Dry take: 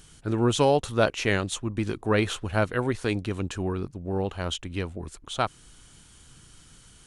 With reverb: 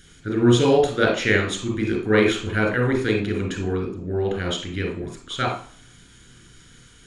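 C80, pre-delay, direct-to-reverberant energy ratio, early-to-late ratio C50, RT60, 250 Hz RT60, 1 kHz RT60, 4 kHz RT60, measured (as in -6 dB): 10.5 dB, 28 ms, 1.0 dB, 5.0 dB, 0.45 s, 0.55 s, 0.45 s, 0.40 s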